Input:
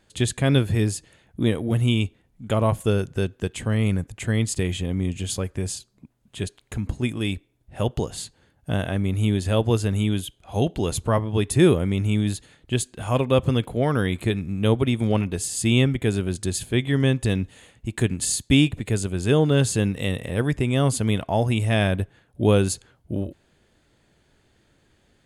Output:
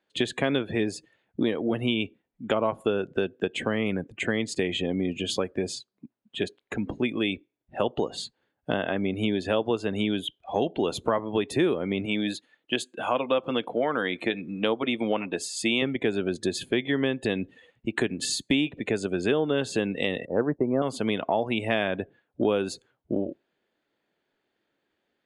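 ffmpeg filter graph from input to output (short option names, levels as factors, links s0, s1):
-filter_complex "[0:a]asettb=1/sr,asplit=3[s0][s1][s2];[s0]atrim=end=12.054[s3];[s1]atrim=start=12.05:end=15.82,asetpts=PTS-STARTPTS,afade=t=in:d=0.004:c=qsin,afade=t=out:st=3.766:d=0.004:c=qsin,highpass=f=310:p=1,bandreject=f=400:w=7.8[s4];[s2]atrim=start=15.816[s5];[s3][s4]acrossfade=d=0.004:c1=hsin:c2=qsin[s6];[s6][s5]acrossfade=d=0.004:c1=qsin:c2=hsin,asettb=1/sr,asplit=3[s7][s8][s9];[s7]atrim=end=20.254[s10];[s8]atrim=start=20.25:end=20.82,asetpts=PTS-STARTPTS,afade=t=in:d=0.004:c=qsin,afade=t=out:st=0.566:d=0.004:c=qsin,acontrast=36,lowpass=f=1300:w=0.5412,lowpass=f=1300:w=1.3066,agate=range=0.0224:threshold=0.158:ratio=3:release=100:detection=peak[s11];[s9]atrim=start=20.816[s12];[s10][s11]acrossfade=d=0.004:c1=hsin:c2=qsin[s13];[s13][s12]acrossfade=d=0.004:c1=qsin:c2=hsin,afftdn=nr=19:nf=-42,acrossover=split=220 4600:gain=0.0631 1 0.112[s14][s15][s16];[s14][s15][s16]amix=inputs=3:normalize=0,acompressor=threshold=0.0316:ratio=4,volume=2.37"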